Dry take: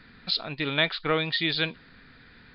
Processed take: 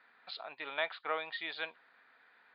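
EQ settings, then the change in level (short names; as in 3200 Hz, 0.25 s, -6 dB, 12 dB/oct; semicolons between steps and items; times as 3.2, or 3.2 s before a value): resonant high-pass 760 Hz, resonance Q 1.8; air absorption 340 m; -8.0 dB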